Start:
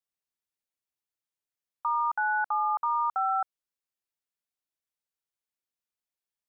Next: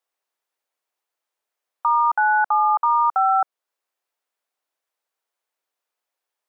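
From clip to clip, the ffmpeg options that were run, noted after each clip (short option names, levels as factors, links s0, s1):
-af "highpass=440,equalizer=f=650:w=0.35:g=10.5,alimiter=limit=0.15:level=0:latency=1:release=301,volume=1.78"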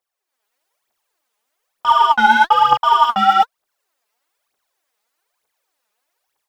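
-af "dynaudnorm=f=230:g=3:m=3.16,asoftclip=type=tanh:threshold=0.355,aphaser=in_gain=1:out_gain=1:delay=5:decay=0.72:speed=1.1:type=triangular,volume=0.75"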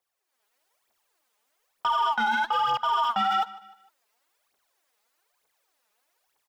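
-filter_complex "[0:a]acrossover=split=810|3900[s0][s1][s2];[s0]acompressor=threshold=0.0447:ratio=4[s3];[s1]acompressor=threshold=0.126:ratio=4[s4];[s2]acompressor=threshold=0.00794:ratio=4[s5];[s3][s4][s5]amix=inputs=3:normalize=0,alimiter=limit=0.126:level=0:latency=1:release=20,aecho=1:1:152|304|456:0.1|0.043|0.0185"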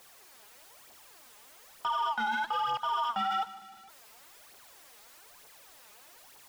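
-af "aeval=exprs='val(0)+0.5*0.00708*sgn(val(0))':c=same,volume=0.473"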